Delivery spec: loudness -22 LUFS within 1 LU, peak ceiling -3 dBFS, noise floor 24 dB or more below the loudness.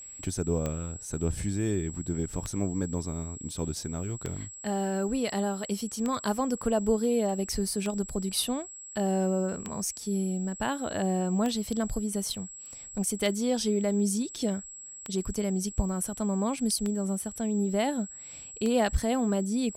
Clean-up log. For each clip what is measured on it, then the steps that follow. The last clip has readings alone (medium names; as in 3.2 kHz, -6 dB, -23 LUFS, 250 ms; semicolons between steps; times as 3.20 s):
clicks found 11; steady tone 7.7 kHz; tone level -42 dBFS; loudness -30.0 LUFS; peak level -12.5 dBFS; loudness target -22.0 LUFS
-> de-click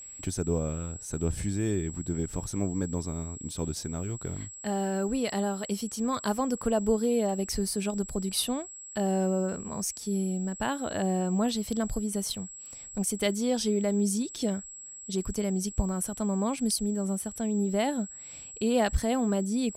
clicks found 0; steady tone 7.7 kHz; tone level -42 dBFS
-> band-stop 7.7 kHz, Q 30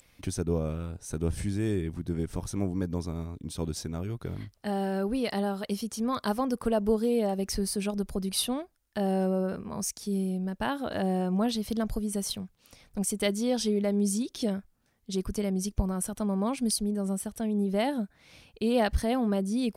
steady tone not found; loudness -30.5 LUFS; peak level -13.0 dBFS; loudness target -22.0 LUFS
-> trim +8.5 dB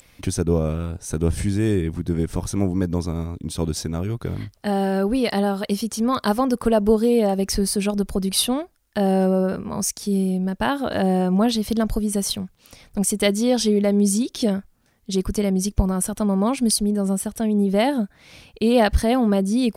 loudness -22.0 LUFS; peak level -4.5 dBFS; noise floor -58 dBFS